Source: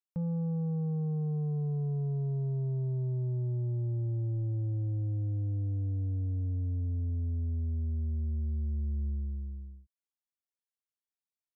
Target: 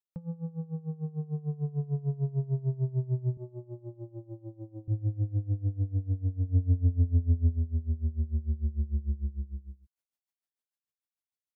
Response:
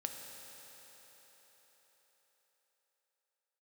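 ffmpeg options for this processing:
-filter_complex "[0:a]dynaudnorm=f=290:g=11:m=7dB,asettb=1/sr,asplit=3[a][b][c];[a]atrim=end=3.374[d];[b]atrim=start=3.37:end=4.88,asetpts=PTS-STARTPTS,afade=t=in:d=0.004:c=qsin,afade=t=out:st=1.506:d=0.004:c=qsin,highpass=280[e];[c]atrim=start=4.876[f];[d][e]acrossfade=d=0.004:c1=hsin:c2=qsin[g];[g][f]acrossfade=d=0.004:c1=qsin:c2=hsin,asplit=3[h][i][j];[h]afade=t=out:st=6.48:d=0.02[k];[i]acontrast=30,afade=t=in:st=6.48:d=0.02,afade=t=out:st=7.58:d=0.02[l];[j]afade=t=in:st=7.58:d=0.02[m];[k][l][m]amix=inputs=3:normalize=0,aeval=exprs='val(0)*pow(10,-20*(0.5-0.5*cos(2*PI*6.7*n/s))/20)':c=same"

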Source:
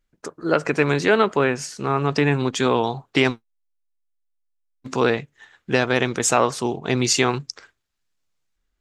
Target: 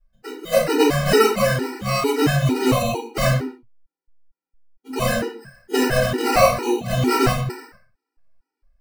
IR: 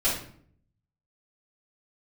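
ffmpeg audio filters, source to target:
-filter_complex "[0:a]acrusher=samples=13:mix=1:aa=0.000001[a];[1:a]atrim=start_sample=2205,afade=t=out:st=0.35:d=0.01,atrim=end_sample=15876[b];[a][b]afir=irnorm=-1:irlink=0,afftfilt=real='re*gt(sin(2*PI*2.2*pts/sr)*(1-2*mod(floor(b*sr/1024/250),2)),0)':imag='im*gt(sin(2*PI*2.2*pts/sr)*(1-2*mod(floor(b*sr/1024/250),2)),0)':win_size=1024:overlap=0.75,volume=-7dB"

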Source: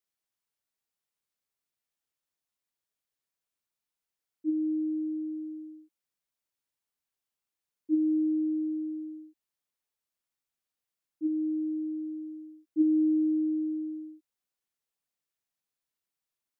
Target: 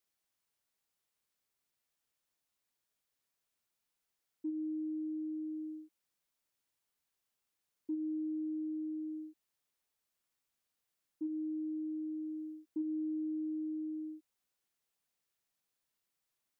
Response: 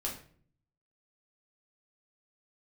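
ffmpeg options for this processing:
-af "acompressor=threshold=-42dB:ratio=4,volume=3dB"

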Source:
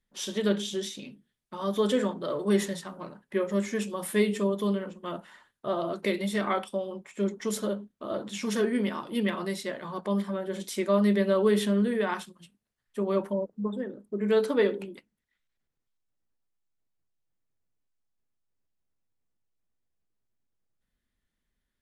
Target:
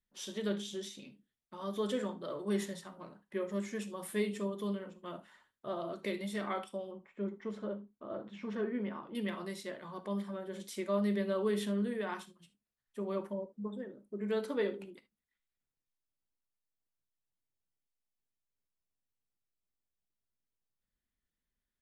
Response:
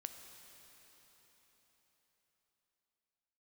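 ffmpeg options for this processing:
-filter_complex "[0:a]asettb=1/sr,asplit=3[a][b][c];[a]atrim=end=6.914[d];[b]atrim=start=6.91:end=9.15,asetpts=PTS-STARTPTS,afade=t=in:d=0.004:c=qsin,afade=t=out:st=2.236:d=0.004:c=qsin,lowpass=2k[e];[c]atrim=start=9.146[f];[d][e]acrossfade=d=0.004:c1=hsin:c2=qsin[g];[g][f]acrossfade=d=0.004:c1=qsin:c2=hsin[h];[1:a]atrim=start_sample=2205,atrim=end_sample=3528[i];[h][i]afir=irnorm=-1:irlink=0,volume=-4.5dB"

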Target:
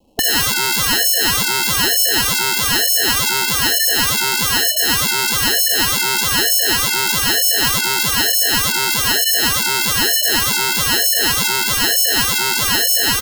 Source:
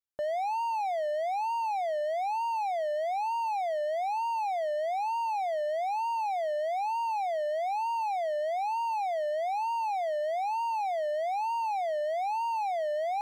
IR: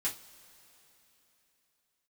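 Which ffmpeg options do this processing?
-filter_complex "[0:a]asplit=2[a][b];[b]volume=32.5dB,asoftclip=hard,volume=-32.5dB,volume=-6dB[c];[a][c]amix=inputs=2:normalize=0,acrusher=samples=37:mix=1:aa=0.000001,asuperstop=centerf=1700:order=20:qfactor=1.6,aecho=1:1:3.8:0.42,asoftclip=type=tanh:threshold=-30.5dB,areverse,acompressor=mode=upward:threshold=-49dB:ratio=2.5,areverse,afftfilt=real='re*lt(hypot(re,im),0.0282)':imag='im*lt(hypot(re,im),0.0282)':win_size=1024:overlap=0.75,alimiter=level_in=34.5dB:limit=-1dB:release=50:level=0:latency=1,volume=-1dB"

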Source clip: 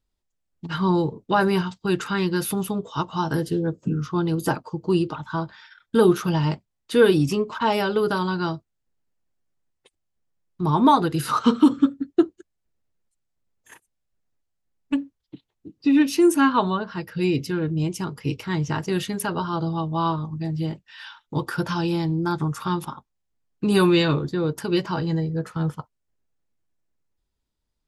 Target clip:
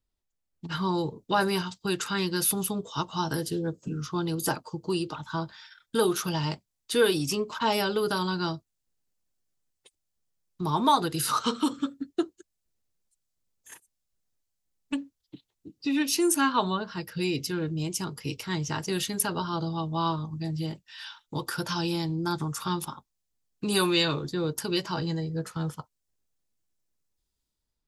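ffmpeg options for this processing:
-filter_complex "[0:a]acrossover=split=410|3800[a][b][c];[a]alimiter=limit=-20.5dB:level=0:latency=1:release=286[d];[c]dynaudnorm=f=490:g=3:m=10dB[e];[d][b][e]amix=inputs=3:normalize=0,volume=-4.5dB"

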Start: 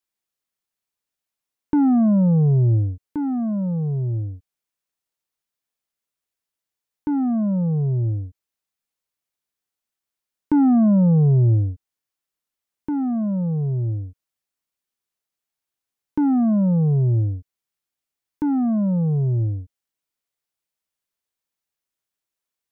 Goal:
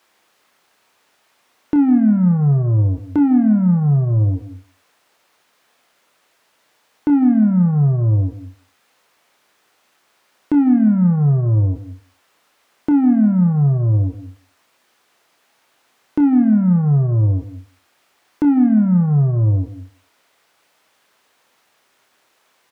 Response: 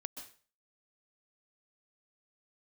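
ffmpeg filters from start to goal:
-filter_complex "[0:a]acompressor=threshold=-21dB:ratio=6,asoftclip=type=tanh:threshold=-20.5dB,asplit=2[a][b];[b]highpass=f=720:p=1,volume=36dB,asoftclip=type=tanh:threshold=-14dB[c];[a][c]amix=inputs=2:normalize=0,lowpass=f=1.2k:p=1,volume=-6dB,asplit=2[d][e];[e]adelay=180,highpass=300,lowpass=3.4k,asoftclip=type=hard:threshold=-22.5dB,volume=-21dB[f];[d][f]amix=inputs=2:normalize=0,asplit=2[g][h];[1:a]atrim=start_sample=2205,adelay=28[i];[h][i]afir=irnorm=-1:irlink=0,volume=-6dB[j];[g][j]amix=inputs=2:normalize=0,volume=6.5dB"

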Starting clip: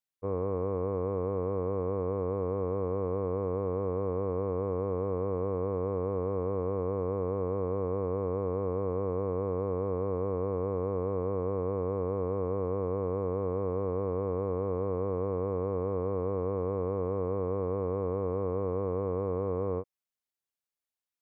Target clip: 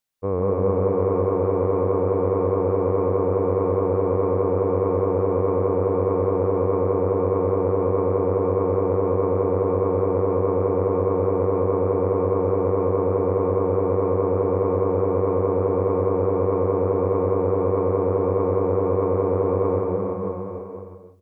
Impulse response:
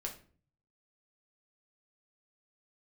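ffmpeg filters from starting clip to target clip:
-filter_complex "[0:a]aecho=1:1:340|612|829.6|1004|1143:0.631|0.398|0.251|0.158|0.1,asplit=2[a][b];[1:a]atrim=start_sample=2205,adelay=149[c];[b][c]afir=irnorm=-1:irlink=0,volume=-3dB[d];[a][d]amix=inputs=2:normalize=0,volume=8dB"

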